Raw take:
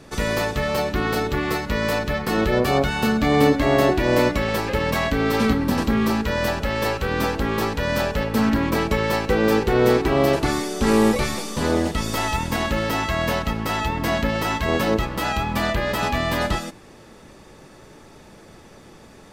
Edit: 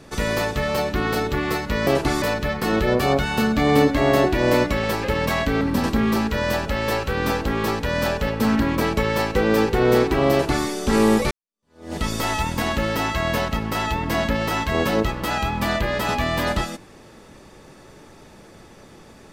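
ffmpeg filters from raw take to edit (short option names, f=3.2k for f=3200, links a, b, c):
-filter_complex "[0:a]asplit=5[a][b][c][d][e];[a]atrim=end=1.872[f];[b]atrim=start=10.248:end=10.602[g];[c]atrim=start=1.868:end=5.262[h];[d]atrim=start=5.548:end=11.25,asetpts=PTS-STARTPTS,afade=t=out:st=5.698:d=0.004:c=hsin[i];[e]atrim=start=11.25,asetpts=PTS-STARTPTS,afade=t=in:d=0.66:c=exp[j];[f][g]acrossfade=d=0.004:c1=hsin:c2=hsin[k];[k][h]acrossfade=d=0.004:c1=hsin:c2=hsin[l];[i][j]concat=n=2:v=0:a=1[m];[l][m]acrossfade=d=0.004:c1=hsin:c2=hsin"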